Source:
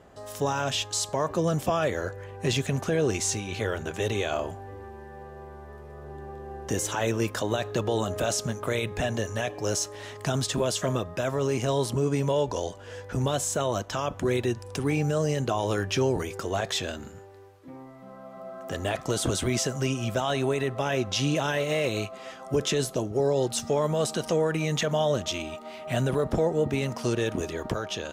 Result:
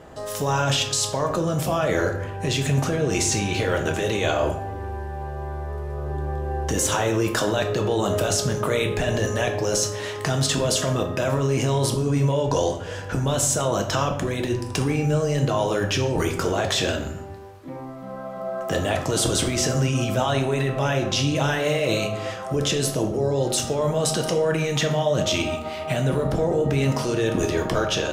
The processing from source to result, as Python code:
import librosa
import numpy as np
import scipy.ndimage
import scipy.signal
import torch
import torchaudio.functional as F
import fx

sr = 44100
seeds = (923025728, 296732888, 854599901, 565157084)

p1 = fx.over_compress(x, sr, threshold_db=-30.0, ratio=-0.5)
p2 = x + F.gain(torch.from_numpy(p1), 2.5).numpy()
p3 = fx.room_shoebox(p2, sr, seeds[0], volume_m3=140.0, walls='mixed', distance_m=0.58)
y = F.gain(torch.from_numpy(p3), -2.0).numpy()